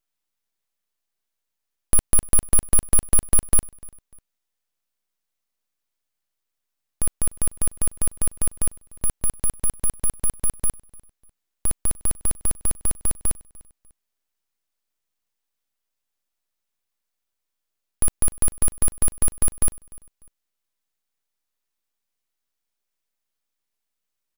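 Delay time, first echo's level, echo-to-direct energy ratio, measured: 298 ms, −23.5 dB, −23.0 dB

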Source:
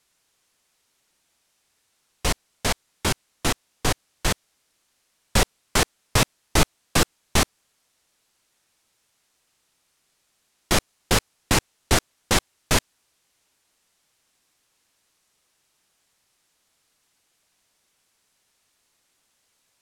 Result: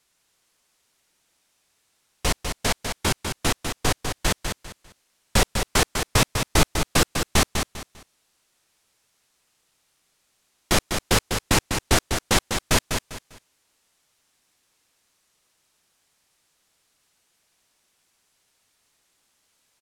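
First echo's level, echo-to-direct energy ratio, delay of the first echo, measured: −6.5 dB, −6.0 dB, 199 ms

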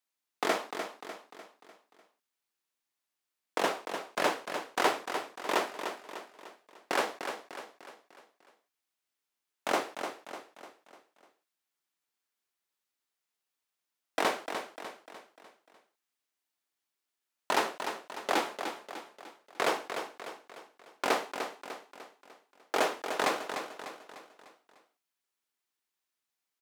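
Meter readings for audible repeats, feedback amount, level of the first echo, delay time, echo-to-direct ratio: 5, 47%, −8.0 dB, 299 ms, −7.0 dB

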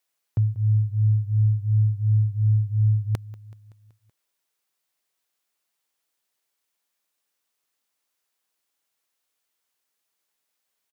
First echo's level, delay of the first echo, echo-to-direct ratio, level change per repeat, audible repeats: −20.0 dB, 189 ms, −18.0 dB, −4.5 dB, 4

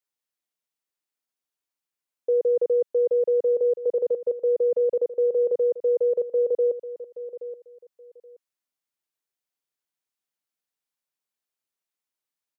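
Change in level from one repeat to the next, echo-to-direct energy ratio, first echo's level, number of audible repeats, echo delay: −13.5 dB, −13.5 dB, −13.5 dB, 2, 825 ms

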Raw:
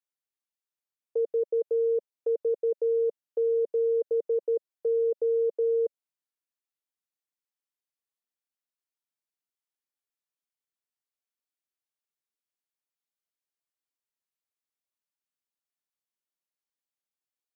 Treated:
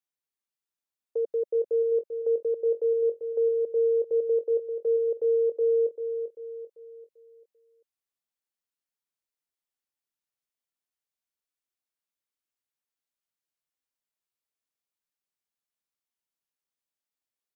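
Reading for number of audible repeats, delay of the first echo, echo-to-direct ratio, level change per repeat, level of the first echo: 4, 392 ms, −7.5 dB, −7.5 dB, −8.5 dB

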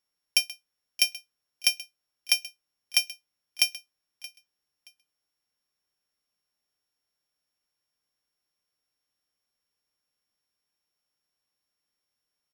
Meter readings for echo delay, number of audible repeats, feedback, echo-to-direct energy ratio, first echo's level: 625 ms, 2, 23%, −19.0 dB, −19.0 dB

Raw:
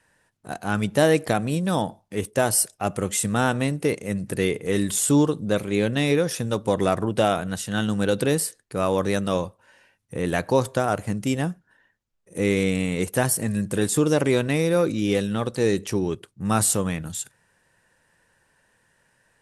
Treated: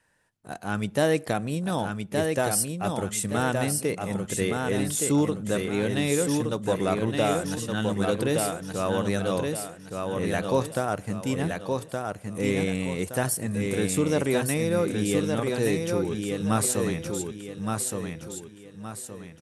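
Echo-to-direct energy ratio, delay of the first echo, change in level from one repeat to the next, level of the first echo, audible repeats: −3.5 dB, 1,169 ms, −9.0 dB, −4.0 dB, 4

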